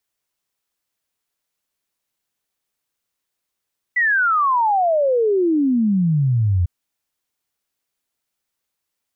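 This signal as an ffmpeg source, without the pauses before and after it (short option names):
-f lavfi -i "aevalsrc='0.2*clip(min(t,2.7-t)/0.01,0,1)*sin(2*PI*2000*2.7/log(84/2000)*(exp(log(84/2000)*t/2.7)-1))':d=2.7:s=44100"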